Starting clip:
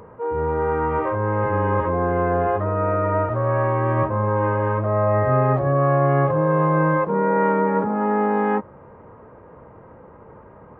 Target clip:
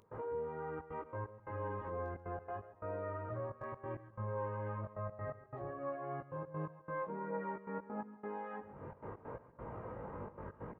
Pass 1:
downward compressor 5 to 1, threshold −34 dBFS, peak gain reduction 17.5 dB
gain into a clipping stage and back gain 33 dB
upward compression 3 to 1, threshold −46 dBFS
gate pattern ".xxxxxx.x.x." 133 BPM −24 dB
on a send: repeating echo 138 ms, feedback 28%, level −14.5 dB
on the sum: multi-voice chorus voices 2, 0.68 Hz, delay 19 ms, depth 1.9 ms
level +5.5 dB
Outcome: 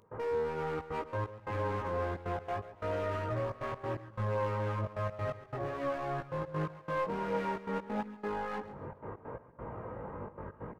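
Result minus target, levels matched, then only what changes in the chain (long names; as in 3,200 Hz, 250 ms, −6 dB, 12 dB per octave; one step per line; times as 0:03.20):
downward compressor: peak gain reduction −9 dB
change: downward compressor 5 to 1, threshold −45 dBFS, peak gain reduction 26 dB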